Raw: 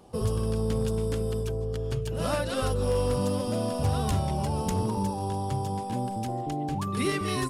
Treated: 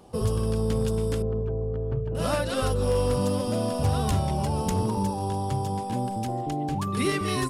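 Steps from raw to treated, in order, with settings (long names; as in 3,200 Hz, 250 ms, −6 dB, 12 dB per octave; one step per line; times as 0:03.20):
0:01.22–0:02.15: low-pass filter 1,000 Hz 12 dB per octave
level +2 dB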